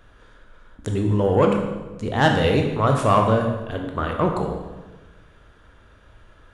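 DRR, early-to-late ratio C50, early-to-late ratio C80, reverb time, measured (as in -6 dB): 2.0 dB, 5.0 dB, 7.0 dB, 1.2 s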